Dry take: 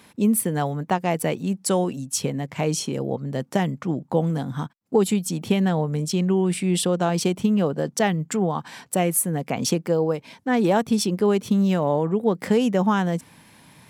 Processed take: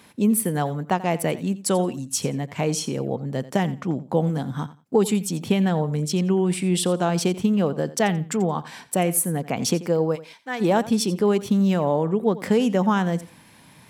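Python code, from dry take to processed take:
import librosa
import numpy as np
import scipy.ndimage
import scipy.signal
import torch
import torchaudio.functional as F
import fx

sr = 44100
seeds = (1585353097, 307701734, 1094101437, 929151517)

y = fx.highpass(x, sr, hz=1300.0, slope=6, at=(10.15, 10.6), fade=0.02)
y = fx.echo_feedback(y, sr, ms=87, feedback_pct=20, wet_db=-17.0)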